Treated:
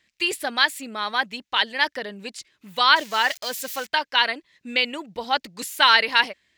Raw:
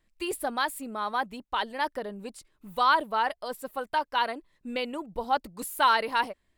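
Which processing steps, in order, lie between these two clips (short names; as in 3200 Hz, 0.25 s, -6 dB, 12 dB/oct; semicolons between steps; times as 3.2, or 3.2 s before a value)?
2.96–3.87 switching spikes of -34 dBFS; HPF 96 Hz 12 dB/oct; band shelf 3400 Hz +12.5 dB 2.4 oct; gain +1.5 dB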